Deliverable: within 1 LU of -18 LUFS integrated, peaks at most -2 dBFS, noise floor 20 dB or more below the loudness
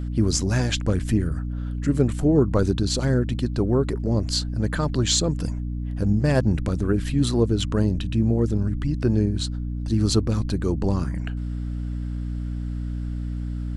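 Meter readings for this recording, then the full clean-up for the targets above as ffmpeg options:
hum 60 Hz; highest harmonic 300 Hz; hum level -26 dBFS; loudness -24.0 LUFS; peak level -5.5 dBFS; loudness target -18.0 LUFS
-> -af "bandreject=f=60:t=h:w=6,bandreject=f=120:t=h:w=6,bandreject=f=180:t=h:w=6,bandreject=f=240:t=h:w=6,bandreject=f=300:t=h:w=6"
-af "volume=2,alimiter=limit=0.794:level=0:latency=1"

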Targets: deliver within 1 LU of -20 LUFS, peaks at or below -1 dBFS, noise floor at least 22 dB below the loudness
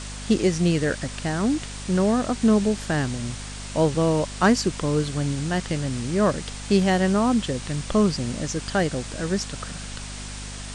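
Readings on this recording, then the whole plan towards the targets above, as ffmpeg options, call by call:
hum 50 Hz; highest harmonic 250 Hz; hum level -35 dBFS; noise floor -36 dBFS; noise floor target -46 dBFS; loudness -23.5 LUFS; peak level -6.0 dBFS; loudness target -20.0 LUFS
-> -af "bandreject=f=50:t=h:w=4,bandreject=f=100:t=h:w=4,bandreject=f=150:t=h:w=4,bandreject=f=200:t=h:w=4,bandreject=f=250:t=h:w=4"
-af "afftdn=nr=10:nf=-36"
-af "volume=1.5"

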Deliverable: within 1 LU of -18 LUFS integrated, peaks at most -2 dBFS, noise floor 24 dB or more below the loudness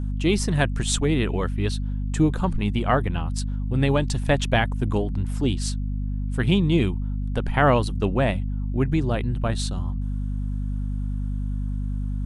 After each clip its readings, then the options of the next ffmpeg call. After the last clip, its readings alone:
hum 50 Hz; highest harmonic 250 Hz; hum level -24 dBFS; loudness -24.5 LUFS; peak level -4.5 dBFS; loudness target -18.0 LUFS
-> -af "bandreject=f=50:t=h:w=6,bandreject=f=100:t=h:w=6,bandreject=f=150:t=h:w=6,bandreject=f=200:t=h:w=6,bandreject=f=250:t=h:w=6"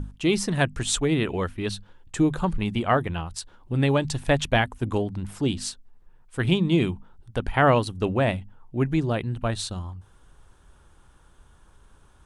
hum not found; loudness -25.0 LUFS; peak level -5.5 dBFS; loudness target -18.0 LUFS
-> -af "volume=2.24,alimiter=limit=0.794:level=0:latency=1"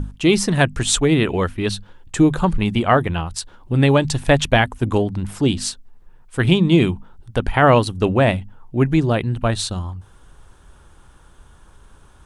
loudness -18.5 LUFS; peak level -2.0 dBFS; noise floor -48 dBFS

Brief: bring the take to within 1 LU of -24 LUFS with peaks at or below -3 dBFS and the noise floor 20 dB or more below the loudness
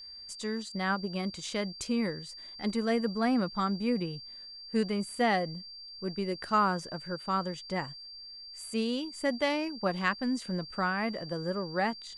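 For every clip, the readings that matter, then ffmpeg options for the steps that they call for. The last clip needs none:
steady tone 4.7 kHz; tone level -44 dBFS; loudness -32.0 LUFS; peak level -13.5 dBFS; loudness target -24.0 LUFS
-> -af "bandreject=f=4700:w=30"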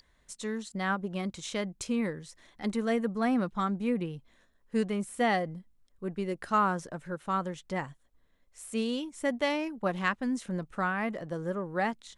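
steady tone not found; loudness -32.0 LUFS; peak level -13.5 dBFS; loudness target -24.0 LUFS
-> -af "volume=2.51"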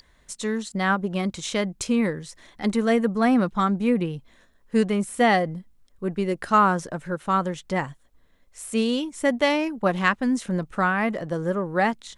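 loudness -24.0 LUFS; peak level -5.5 dBFS; noise floor -59 dBFS

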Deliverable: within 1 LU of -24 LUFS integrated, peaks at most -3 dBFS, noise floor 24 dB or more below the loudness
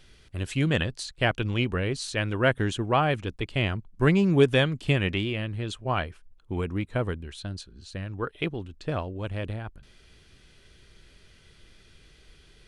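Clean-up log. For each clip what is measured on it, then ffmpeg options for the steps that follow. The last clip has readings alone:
loudness -27.5 LUFS; peak level -7.5 dBFS; loudness target -24.0 LUFS
-> -af "volume=1.5"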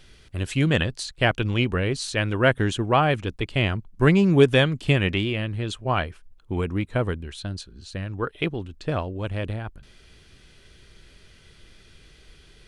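loudness -24.0 LUFS; peak level -4.0 dBFS; noise floor -53 dBFS

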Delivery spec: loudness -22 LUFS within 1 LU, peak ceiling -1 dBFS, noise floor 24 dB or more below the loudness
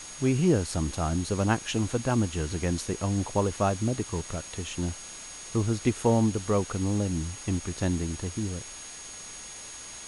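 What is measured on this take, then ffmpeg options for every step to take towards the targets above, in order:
steady tone 6.6 kHz; tone level -43 dBFS; noise floor -43 dBFS; noise floor target -53 dBFS; loudness -28.5 LUFS; peak level -10.5 dBFS; loudness target -22.0 LUFS
-> -af "bandreject=f=6600:w=30"
-af "afftdn=nr=10:nf=-43"
-af "volume=2.11"

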